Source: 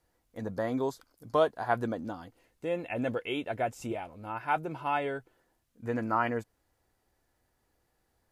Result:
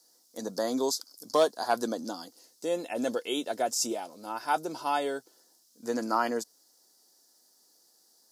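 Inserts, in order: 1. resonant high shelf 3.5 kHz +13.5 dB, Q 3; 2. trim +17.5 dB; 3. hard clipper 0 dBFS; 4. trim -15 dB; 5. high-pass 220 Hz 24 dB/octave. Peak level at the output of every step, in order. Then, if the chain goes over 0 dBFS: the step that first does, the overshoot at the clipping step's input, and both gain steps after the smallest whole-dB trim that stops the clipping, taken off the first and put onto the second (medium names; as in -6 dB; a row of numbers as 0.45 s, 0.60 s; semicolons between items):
-12.0 dBFS, +5.5 dBFS, 0.0 dBFS, -15.0 dBFS, -12.0 dBFS; step 2, 5.5 dB; step 2 +11.5 dB, step 4 -9 dB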